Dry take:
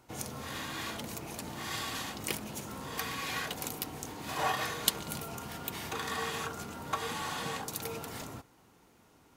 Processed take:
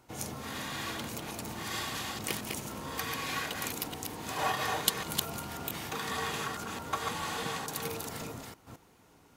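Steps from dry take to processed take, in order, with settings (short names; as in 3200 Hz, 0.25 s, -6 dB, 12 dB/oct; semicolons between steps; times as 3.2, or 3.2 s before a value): reverse delay 0.219 s, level -4 dB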